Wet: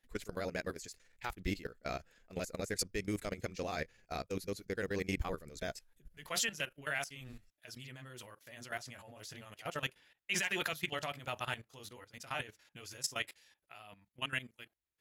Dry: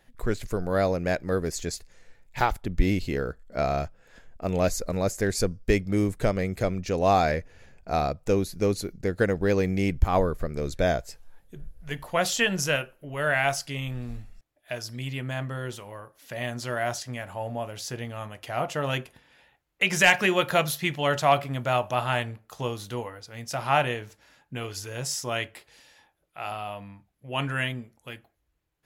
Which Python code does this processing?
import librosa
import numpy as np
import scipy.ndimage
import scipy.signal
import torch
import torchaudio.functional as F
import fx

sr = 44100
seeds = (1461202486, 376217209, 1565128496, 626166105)

y = fx.stretch_grains(x, sr, factor=0.52, grain_ms=85.0)
y = fx.low_shelf(y, sr, hz=270.0, db=-11.5)
y = fx.level_steps(y, sr, step_db=16)
y = fx.peak_eq(y, sr, hz=770.0, db=-8.5, octaves=1.6)